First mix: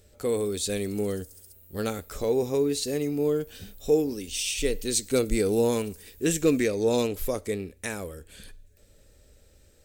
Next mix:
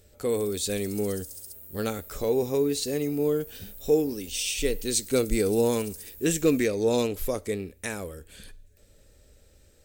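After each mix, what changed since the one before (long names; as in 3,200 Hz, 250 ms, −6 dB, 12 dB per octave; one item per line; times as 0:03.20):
background +8.5 dB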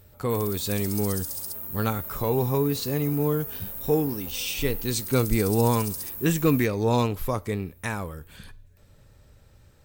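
background +11.0 dB
master: add octave-band graphic EQ 125/500/1,000/8,000 Hz +12/−5/+12/−6 dB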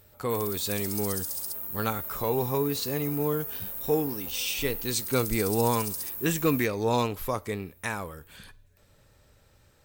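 master: add low-shelf EQ 280 Hz −8 dB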